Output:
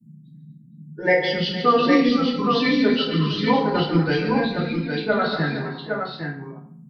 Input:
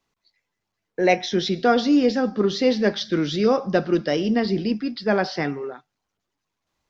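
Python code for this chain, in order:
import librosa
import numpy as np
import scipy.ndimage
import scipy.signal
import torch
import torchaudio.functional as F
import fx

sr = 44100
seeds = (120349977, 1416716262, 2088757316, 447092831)

y = fx.bin_expand(x, sr, power=1.5)
y = fx.dynamic_eq(y, sr, hz=330.0, q=0.82, threshold_db=-33.0, ratio=4.0, max_db=-5)
y = fx.formant_shift(y, sr, semitones=-3)
y = fx.dmg_noise_band(y, sr, seeds[0], low_hz=140.0, high_hz=220.0, level_db=-50.0)
y = fx.echo_multitap(y, sr, ms=(142, 240, 463, 813), db=(-8.5, -10.5, -15.5, -5.0))
y = fx.rev_fdn(y, sr, rt60_s=0.55, lf_ratio=1.0, hf_ratio=0.75, size_ms=20.0, drr_db=-4.0)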